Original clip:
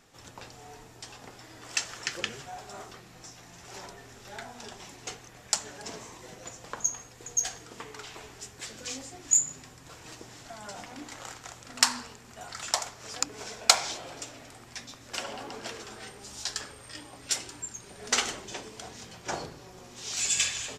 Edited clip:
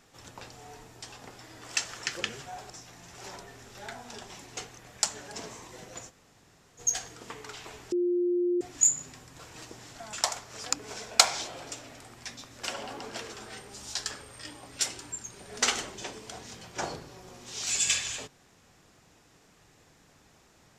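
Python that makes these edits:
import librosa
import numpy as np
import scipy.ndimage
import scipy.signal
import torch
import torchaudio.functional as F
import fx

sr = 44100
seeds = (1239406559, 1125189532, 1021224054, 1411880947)

y = fx.edit(x, sr, fx.cut(start_s=2.7, length_s=0.5),
    fx.room_tone_fill(start_s=6.6, length_s=0.69, crossfade_s=0.04),
    fx.bleep(start_s=8.42, length_s=0.69, hz=353.0, db=-23.5),
    fx.cut(start_s=10.63, length_s=2.0), tone=tone)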